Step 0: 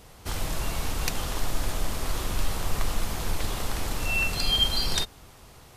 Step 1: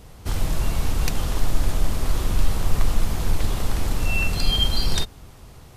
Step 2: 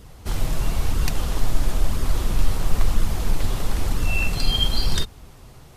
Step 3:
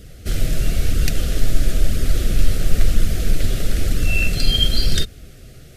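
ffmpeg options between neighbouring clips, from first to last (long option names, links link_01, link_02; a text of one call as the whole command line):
ffmpeg -i in.wav -af "lowshelf=frequency=330:gain=8.5" out.wav
ffmpeg -i in.wav -af "flanger=delay=0.6:depth=7.5:regen=-45:speed=1:shape=sinusoidal,volume=3.5dB" out.wav
ffmpeg -i in.wav -af "asuperstop=centerf=950:order=4:qfactor=1.3,volume=4dB" out.wav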